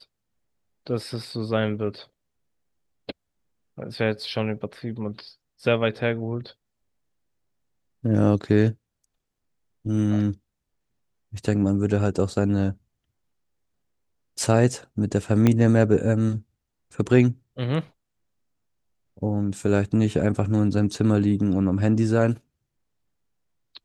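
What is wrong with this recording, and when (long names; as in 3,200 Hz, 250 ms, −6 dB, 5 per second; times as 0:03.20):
0:15.47: click −7 dBFS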